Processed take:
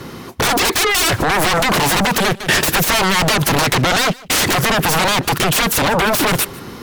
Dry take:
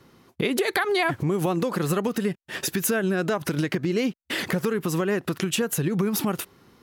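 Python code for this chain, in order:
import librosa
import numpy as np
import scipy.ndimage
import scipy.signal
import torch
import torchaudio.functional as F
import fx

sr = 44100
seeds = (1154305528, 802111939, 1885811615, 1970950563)

y = fx.fold_sine(x, sr, drive_db=20, ceiling_db=-11.0)
y = y + 10.0 ** (-22.5 / 20.0) * np.pad(y, (int(150 * sr / 1000.0), 0))[:len(y)]
y = fx.band_squash(y, sr, depth_pct=70, at=(2.4, 3.96))
y = y * librosa.db_to_amplitude(-1.0)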